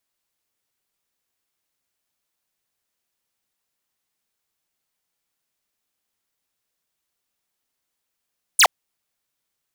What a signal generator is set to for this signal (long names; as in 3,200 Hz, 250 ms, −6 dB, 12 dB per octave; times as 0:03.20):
single falling chirp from 11,000 Hz, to 570 Hz, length 0.07 s square, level −11.5 dB